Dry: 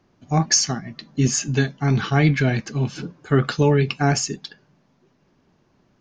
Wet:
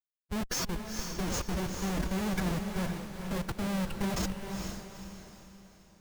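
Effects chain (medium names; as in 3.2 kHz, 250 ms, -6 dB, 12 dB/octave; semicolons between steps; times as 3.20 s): Schmitt trigger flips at -20.5 dBFS; formant-preserving pitch shift +5.5 st; echo that smears into a reverb 451 ms, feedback 42%, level -5 dB; trim -9 dB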